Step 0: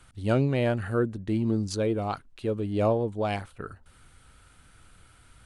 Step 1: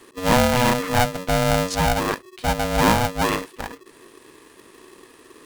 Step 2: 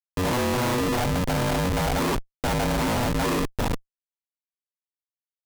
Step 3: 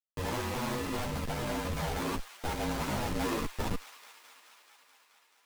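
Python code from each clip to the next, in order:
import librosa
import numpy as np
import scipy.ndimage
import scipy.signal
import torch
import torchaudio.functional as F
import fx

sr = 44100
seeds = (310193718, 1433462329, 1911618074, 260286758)

y1 = x * np.sign(np.sin(2.0 * np.pi * 370.0 * np.arange(len(x)) / sr))
y1 = y1 * 10.0 ** (6.5 / 20.0)
y2 = scipy.signal.sosfilt(scipy.signal.butter(4, 1200.0, 'lowpass', fs=sr, output='sos'), y1)
y2 = fx.rider(y2, sr, range_db=4, speed_s=0.5)
y2 = fx.schmitt(y2, sr, flips_db=-33.0)
y3 = fx.rider(y2, sr, range_db=10, speed_s=2.0)
y3 = fx.echo_wet_highpass(y3, sr, ms=215, feedback_pct=77, hz=1500.0, wet_db=-12.5)
y3 = fx.ensemble(y3, sr)
y3 = y3 * 10.0 ** (-6.5 / 20.0)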